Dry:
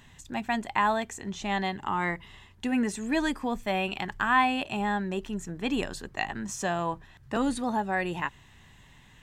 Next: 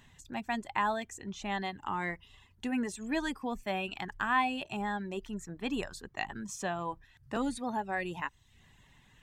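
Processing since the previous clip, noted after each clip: reverb removal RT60 0.57 s; gain -5 dB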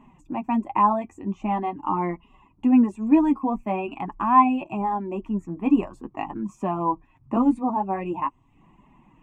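EQ curve 120 Hz 0 dB, 310 Hz +15 dB, 440 Hz +1 dB, 1100 Hz +11 dB, 1600 Hz -15 dB, 2500 Hz 0 dB, 3900 Hz -26 dB, 7300 Hz -15 dB, 11000 Hz -18 dB; flange 0.45 Hz, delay 4.6 ms, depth 6.6 ms, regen -27%; gain +6.5 dB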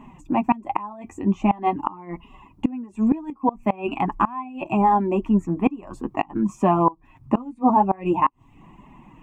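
flipped gate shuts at -15 dBFS, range -24 dB; gain +8 dB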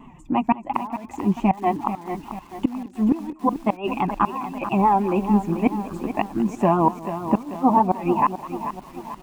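feedback echo 0.206 s, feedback 40%, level -18 dB; vibrato 5.8 Hz 87 cents; lo-fi delay 0.439 s, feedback 55%, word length 7-bit, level -10.5 dB

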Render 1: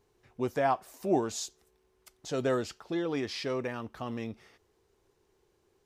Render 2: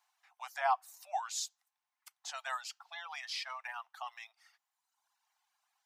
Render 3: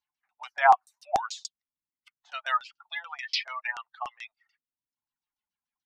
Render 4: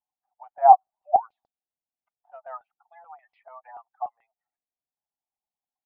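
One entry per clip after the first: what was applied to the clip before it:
steep high-pass 720 Hz 72 dB/oct; reverb removal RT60 1.2 s
per-bin expansion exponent 1.5; LFO low-pass saw down 6.9 Hz 610–6200 Hz; gain +9 dB
ladder low-pass 810 Hz, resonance 70%; gain +6.5 dB

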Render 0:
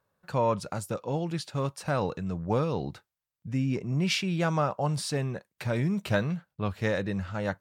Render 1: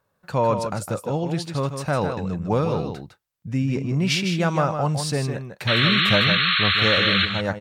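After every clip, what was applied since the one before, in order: painted sound noise, 5.67–7.26, 1100–4300 Hz -26 dBFS; on a send: echo 0.156 s -7.5 dB; on the sum: gain +5 dB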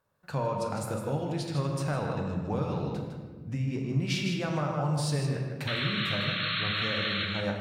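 compressor, threshold -23 dBFS, peak gain reduction 9.5 dB; on a send at -2.5 dB: reverb RT60 1.5 s, pre-delay 13 ms; on the sum: gain -6 dB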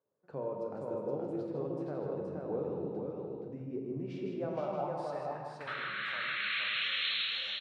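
band-pass sweep 400 Hz -> 4700 Hz, 4.07–7.55; on a send: echo 0.472 s -3 dB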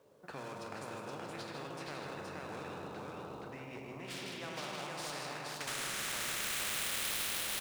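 median filter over 9 samples; spectral compressor 4:1; gain +1 dB

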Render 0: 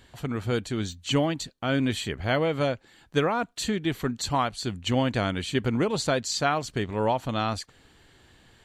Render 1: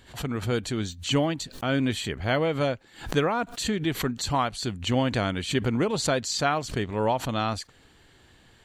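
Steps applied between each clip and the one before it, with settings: backwards sustainer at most 140 dB/s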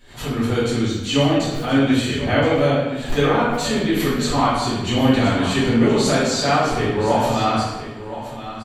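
echo 1.023 s -12.5 dB; reverb RT60 1.1 s, pre-delay 4 ms, DRR -12 dB; gain -5 dB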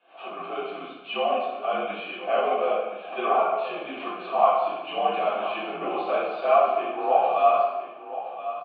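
mistuned SSB -60 Hz 330–3400 Hz; vowel filter a; gain +6.5 dB

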